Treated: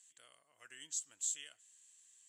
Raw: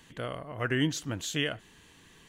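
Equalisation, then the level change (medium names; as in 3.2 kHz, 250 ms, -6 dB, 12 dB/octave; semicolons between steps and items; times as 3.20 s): band-pass filter 7.7 kHz, Q 8.6; +8.5 dB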